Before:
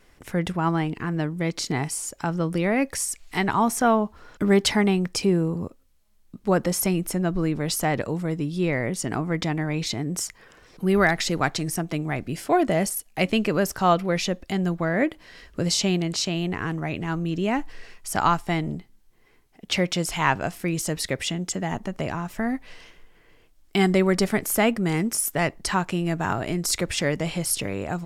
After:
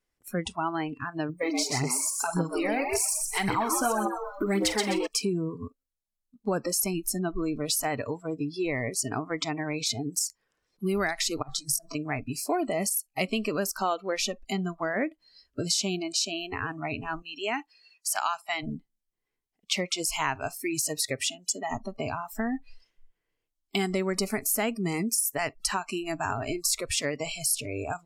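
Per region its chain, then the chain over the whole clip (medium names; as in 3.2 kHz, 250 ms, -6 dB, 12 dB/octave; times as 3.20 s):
1.29–5.07 s: doubling 46 ms -14 dB + frequency-shifting echo 127 ms, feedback 31%, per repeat +120 Hz, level -5 dB + phaser 1.8 Hz, delay 3.9 ms, feedback 57%
11.42–11.95 s: peaking EQ 2.7 kHz -10 dB 0.27 oct + compressor with a negative ratio -31 dBFS, ratio -0.5 + doubling 21 ms -6.5 dB
17.22–18.63 s: high-pass 570 Hz 6 dB/octave + peaking EQ 2.7 kHz +3 dB 1.4 oct
whole clip: spectral noise reduction 26 dB; tone controls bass -1 dB, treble +6 dB; compression 3:1, threshold -26 dBFS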